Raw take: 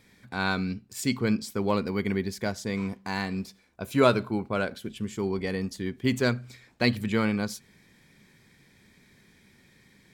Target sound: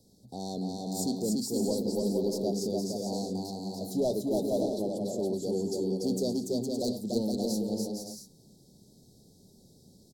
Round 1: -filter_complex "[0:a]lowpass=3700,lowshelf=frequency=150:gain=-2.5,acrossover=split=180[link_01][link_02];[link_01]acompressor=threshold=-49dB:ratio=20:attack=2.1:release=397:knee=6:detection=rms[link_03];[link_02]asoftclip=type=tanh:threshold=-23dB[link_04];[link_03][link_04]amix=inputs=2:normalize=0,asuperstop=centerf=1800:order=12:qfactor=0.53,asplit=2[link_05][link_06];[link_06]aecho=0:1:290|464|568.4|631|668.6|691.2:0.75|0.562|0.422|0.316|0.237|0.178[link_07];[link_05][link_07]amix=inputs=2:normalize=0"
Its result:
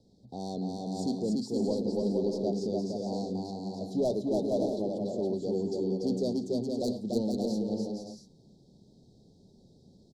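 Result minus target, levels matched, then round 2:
4,000 Hz band −4.5 dB
-filter_complex "[0:a]lowshelf=frequency=150:gain=-2.5,acrossover=split=180[link_01][link_02];[link_01]acompressor=threshold=-49dB:ratio=20:attack=2.1:release=397:knee=6:detection=rms[link_03];[link_02]asoftclip=type=tanh:threshold=-23dB[link_04];[link_03][link_04]amix=inputs=2:normalize=0,asuperstop=centerf=1800:order=12:qfactor=0.53,asplit=2[link_05][link_06];[link_06]aecho=0:1:290|464|568.4|631|668.6|691.2:0.75|0.562|0.422|0.316|0.237|0.178[link_07];[link_05][link_07]amix=inputs=2:normalize=0"

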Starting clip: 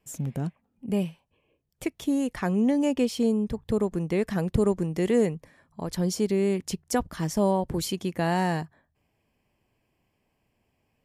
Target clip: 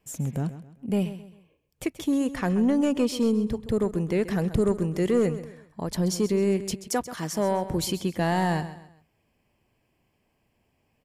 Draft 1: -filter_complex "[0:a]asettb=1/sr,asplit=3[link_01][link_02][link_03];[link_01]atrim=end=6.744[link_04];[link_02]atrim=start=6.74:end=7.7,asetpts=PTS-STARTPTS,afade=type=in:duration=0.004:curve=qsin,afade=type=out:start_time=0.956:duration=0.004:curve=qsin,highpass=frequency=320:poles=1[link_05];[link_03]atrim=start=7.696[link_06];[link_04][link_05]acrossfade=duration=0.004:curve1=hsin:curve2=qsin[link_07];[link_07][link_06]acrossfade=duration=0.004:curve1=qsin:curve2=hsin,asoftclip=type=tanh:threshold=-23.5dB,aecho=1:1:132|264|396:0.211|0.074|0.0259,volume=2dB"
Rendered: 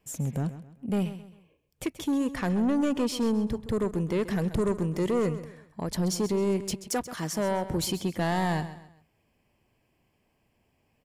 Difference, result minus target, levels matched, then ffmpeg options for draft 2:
soft clipping: distortion +8 dB
-filter_complex "[0:a]asettb=1/sr,asplit=3[link_01][link_02][link_03];[link_01]atrim=end=6.744[link_04];[link_02]atrim=start=6.74:end=7.7,asetpts=PTS-STARTPTS,afade=type=in:duration=0.004:curve=qsin,afade=type=out:start_time=0.956:duration=0.004:curve=qsin,highpass=frequency=320:poles=1[link_05];[link_03]atrim=start=7.696[link_06];[link_04][link_05]acrossfade=duration=0.004:curve1=hsin:curve2=qsin[link_07];[link_07][link_06]acrossfade=duration=0.004:curve1=qsin:curve2=hsin,asoftclip=type=tanh:threshold=-16.5dB,aecho=1:1:132|264|396:0.211|0.074|0.0259,volume=2dB"

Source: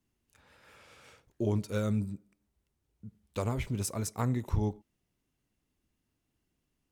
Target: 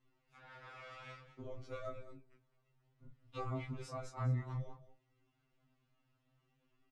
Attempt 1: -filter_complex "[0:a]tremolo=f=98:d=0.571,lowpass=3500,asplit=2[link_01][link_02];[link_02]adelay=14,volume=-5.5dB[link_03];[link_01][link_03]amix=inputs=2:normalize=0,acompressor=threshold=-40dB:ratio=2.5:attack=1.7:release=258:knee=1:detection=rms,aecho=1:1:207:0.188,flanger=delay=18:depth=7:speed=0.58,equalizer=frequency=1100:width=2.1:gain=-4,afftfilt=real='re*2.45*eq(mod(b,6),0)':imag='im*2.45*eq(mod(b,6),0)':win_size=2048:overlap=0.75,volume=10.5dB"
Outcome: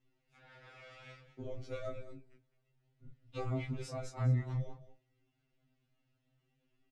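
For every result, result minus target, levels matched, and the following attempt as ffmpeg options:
1,000 Hz band −7.0 dB; downward compressor: peak gain reduction −5 dB
-filter_complex "[0:a]tremolo=f=98:d=0.571,lowpass=3500,asplit=2[link_01][link_02];[link_02]adelay=14,volume=-5.5dB[link_03];[link_01][link_03]amix=inputs=2:normalize=0,acompressor=threshold=-40dB:ratio=2.5:attack=1.7:release=258:knee=1:detection=rms,aecho=1:1:207:0.188,flanger=delay=18:depth=7:speed=0.58,equalizer=frequency=1100:width=2.1:gain=5.5,afftfilt=real='re*2.45*eq(mod(b,6),0)':imag='im*2.45*eq(mod(b,6),0)':win_size=2048:overlap=0.75,volume=10.5dB"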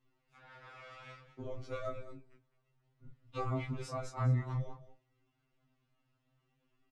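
downward compressor: peak gain reduction −5 dB
-filter_complex "[0:a]tremolo=f=98:d=0.571,lowpass=3500,asplit=2[link_01][link_02];[link_02]adelay=14,volume=-5.5dB[link_03];[link_01][link_03]amix=inputs=2:normalize=0,acompressor=threshold=-48dB:ratio=2.5:attack=1.7:release=258:knee=1:detection=rms,aecho=1:1:207:0.188,flanger=delay=18:depth=7:speed=0.58,equalizer=frequency=1100:width=2.1:gain=5.5,afftfilt=real='re*2.45*eq(mod(b,6),0)':imag='im*2.45*eq(mod(b,6),0)':win_size=2048:overlap=0.75,volume=10.5dB"

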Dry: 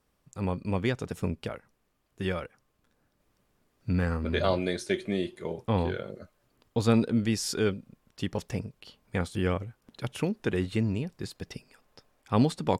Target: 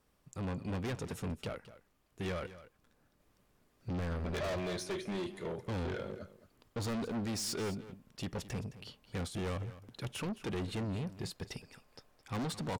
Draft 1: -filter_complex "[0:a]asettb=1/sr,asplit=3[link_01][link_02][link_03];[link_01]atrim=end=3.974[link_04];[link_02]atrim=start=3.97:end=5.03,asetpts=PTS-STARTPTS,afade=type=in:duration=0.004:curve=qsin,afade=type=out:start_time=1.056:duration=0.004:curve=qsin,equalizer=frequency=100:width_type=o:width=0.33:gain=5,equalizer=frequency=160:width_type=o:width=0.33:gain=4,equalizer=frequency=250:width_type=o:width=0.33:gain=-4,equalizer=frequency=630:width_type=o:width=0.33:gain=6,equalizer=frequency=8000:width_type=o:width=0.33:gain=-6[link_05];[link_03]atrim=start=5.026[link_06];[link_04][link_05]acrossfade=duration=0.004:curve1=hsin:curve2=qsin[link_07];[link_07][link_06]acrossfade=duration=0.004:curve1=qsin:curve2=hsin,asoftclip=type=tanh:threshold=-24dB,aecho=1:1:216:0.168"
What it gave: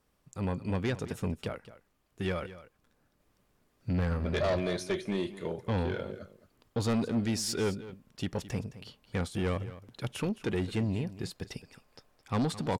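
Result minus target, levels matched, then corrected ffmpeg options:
soft clipping: distortion −6 dB
-filter_complex "[0:a]asettb=1/sr,asplit=3[link_01][link_02][link_03];[link_01]atrim=end=3.974[link_04];[link_02]atrim=start=3.97:end=5.03,asetpts=PTS-STARTPTS,afade=type=in:duration=0.004:curve=qsin,afade=type=out:start_time=1.056:duration=0.004:curve=qsin,equalizer=frequency=100:width_type=o:width=0.33:gain=5,equalizer=frequency=160:width_type=o:width=0.33:gain=4,equalizer=frequency=250:width_type=o:width=0.33:gain=-4,equalizer=frequency=630:width_type=o:width=0.33:gain=6,equalizer=frequency=8000:width_type=o:width=0.33:gain=-6[link_05];[link_03]atrim=start=5.026[link_06];[link_04][link_05]acrossfade=duration=0.004:curve1=hsin:curve2=qsin[link_07];[link_07][link_06]acrossfade=duration=0.004:curve1=qsin:curve2=hsin,asoftclip=type=tanh:threshold=-34dB,aecho=1:1:216:0.168"

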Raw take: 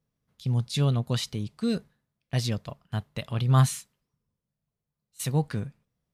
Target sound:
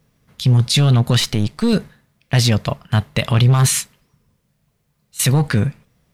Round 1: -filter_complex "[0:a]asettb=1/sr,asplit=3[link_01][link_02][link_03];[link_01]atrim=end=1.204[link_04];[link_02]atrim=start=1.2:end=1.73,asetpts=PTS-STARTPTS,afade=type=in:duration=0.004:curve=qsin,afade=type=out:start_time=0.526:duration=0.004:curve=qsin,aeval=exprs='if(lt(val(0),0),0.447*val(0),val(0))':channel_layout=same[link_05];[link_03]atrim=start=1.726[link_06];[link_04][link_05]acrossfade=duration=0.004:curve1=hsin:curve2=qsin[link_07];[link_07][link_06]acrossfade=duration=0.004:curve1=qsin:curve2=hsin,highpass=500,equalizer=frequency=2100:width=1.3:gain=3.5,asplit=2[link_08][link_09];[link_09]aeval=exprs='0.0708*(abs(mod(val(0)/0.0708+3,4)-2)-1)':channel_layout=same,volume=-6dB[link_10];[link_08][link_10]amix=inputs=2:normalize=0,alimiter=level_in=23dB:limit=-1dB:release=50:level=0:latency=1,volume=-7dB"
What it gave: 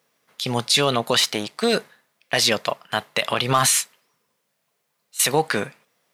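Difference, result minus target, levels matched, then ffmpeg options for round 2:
500 Hz band +6.0 dB
-filter_complex "[0:a]asettb=1/sr,asplit=3[link_01][link_02][link_03];[link_01]atrim=end=1.204[link_04];[link_02]atrim=start=1.2:end=1.73,asetpts=PTS-STARTPTS,afade=type=in:duration=0.004:curve=qsin,afade=type=out:start_time=0.526:duration=0.004:curve=qsin,aeval=exprs='if(lt(val(0),0),0.447*val(0),val(0))':channel_layout=same[link_05];[link_03]atrim=start=1.726[link_06];[link_04][link_05]acrossfade=duration=0.004:curve1=hsin:curve2=qsin[link_07];[link_07][link_06]acrossfade=duration=0.004:curve1=qsin:curve2=hsin,equalizer=frequency=2100:width=1.3:gain=3.5,asplit=2[link_08][link_09];[link_09]aeval=exprs='0.0708*(abs(mod(val(0)/0.0708+3,4)-2)-1)':channel_layout=same,volume=-6dB[link_10];[link_08][link_10]amix=inputs=2:normalize=0,alimiter=level_in=23dB:limit=-1dB:release=50:level=0:latency=1,volume=-7dB"

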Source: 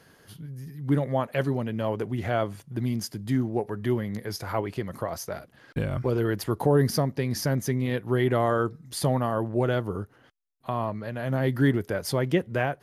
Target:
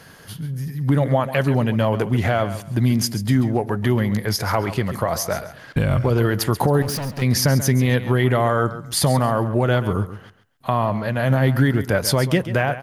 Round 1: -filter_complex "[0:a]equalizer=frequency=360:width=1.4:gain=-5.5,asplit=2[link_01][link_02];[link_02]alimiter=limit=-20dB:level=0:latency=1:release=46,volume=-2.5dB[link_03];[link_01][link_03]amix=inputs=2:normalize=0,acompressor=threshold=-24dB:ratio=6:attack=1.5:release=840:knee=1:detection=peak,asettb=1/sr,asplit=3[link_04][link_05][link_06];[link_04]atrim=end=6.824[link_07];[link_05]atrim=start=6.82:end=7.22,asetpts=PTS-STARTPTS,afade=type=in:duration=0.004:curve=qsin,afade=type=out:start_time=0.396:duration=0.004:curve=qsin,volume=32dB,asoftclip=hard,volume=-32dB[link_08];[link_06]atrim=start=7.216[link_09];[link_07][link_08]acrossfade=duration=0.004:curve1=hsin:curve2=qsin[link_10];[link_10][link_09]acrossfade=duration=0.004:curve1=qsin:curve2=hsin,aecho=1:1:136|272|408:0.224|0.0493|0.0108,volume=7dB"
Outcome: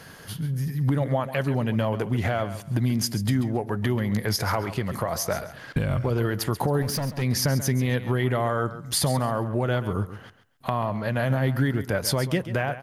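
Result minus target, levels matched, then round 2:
downward compressor: peak gain reduction +6 dB
-filter_complex "[0:a]equalizer=frequency=360:width=1.4:gain=-5.5,asplit=2[link_01][link_02];[link_02]alimiter=limit=-20dB:level=0:latency=1:release=46,volume=-2.5dB[link_03];[link_01][link_03]amix=inputs=2:normalize=0,acompressor=threshold=-16.5dB:ratio=6:attack=1.5:release=840:knee=1:detection=peak,asettb=1/sr,asplit=3[link_04][link_05][link_06];[link_04]atrim=end=6.824[link_07];[link_05]atrim=start=6.82:end=7.22,asetpts=PTS-STARTPTS,afade=type=in:duration=0.004:curve=qsin,afade=type=out:start_time=0.396:duration=0.004:curve=qsin,volume=32dB,asoftclip=hard,volume=-32dB[link_08];[link_06]atrim=start=7.216[link_09];[link_07][link_08]acrossfade=duration=0.004:curve1=hsin:curve2=qsin[link_10];[link_10][link_09]acrossfade=duration=0.004:curve1=qsin:curve2=hsin,aecho=1:1:136|272|408:0.224|0.0493|0.0108,volume=7dB"

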